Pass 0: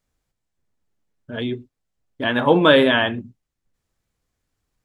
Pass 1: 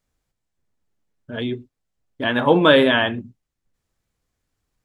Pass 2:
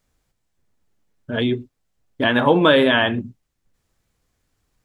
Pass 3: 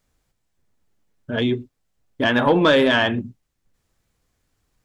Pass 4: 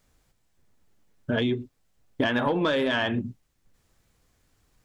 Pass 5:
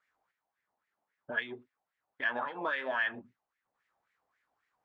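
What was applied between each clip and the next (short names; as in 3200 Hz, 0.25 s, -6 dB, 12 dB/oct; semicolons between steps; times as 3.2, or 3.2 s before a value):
nothing audible
compressor 2:1, threshold -22 dBFS, peak gain reduction 8 dB; gain +6 dB
soft clip -6.5 dBFS, distortion -20 dB
compressor 12:1, threshold -25 dBFS, peak gain reduction 13.5 dB; gain +3.5 dB
wah 3.7 Hz 750–2000 Hz, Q 4.1; gain +2.5 dB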